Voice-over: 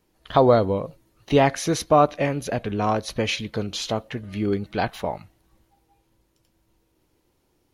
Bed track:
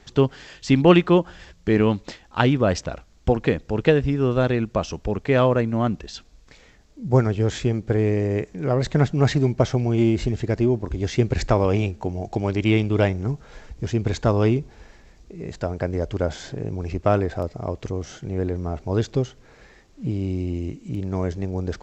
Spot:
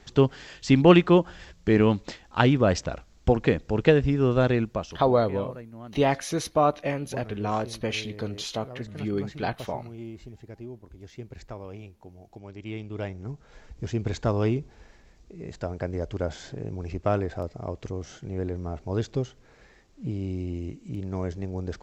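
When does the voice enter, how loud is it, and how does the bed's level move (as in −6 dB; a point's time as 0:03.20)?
4.65 s, −5.0 dB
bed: 0:04.59 −1.5 dB
0:05.27 −20.5 dB
0:12.40 −20.5 dB
0:13.79 −5.5 dB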